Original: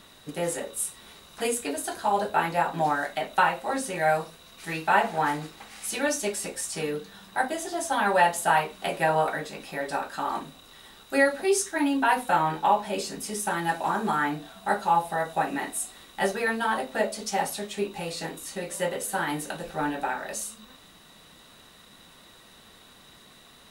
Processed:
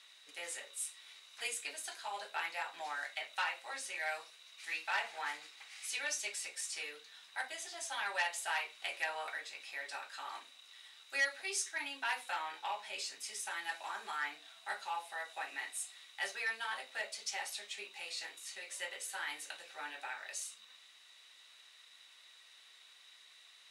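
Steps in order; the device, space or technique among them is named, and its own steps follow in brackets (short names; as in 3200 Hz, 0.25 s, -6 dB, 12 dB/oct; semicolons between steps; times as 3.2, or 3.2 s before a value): intercom (BPF 350–4900 Hz; bell 2200 Hz +6.5 dB 0.57 oct; soft clip -11.5 dBFS, distortion -21 dB); differentiator; gain +1 dB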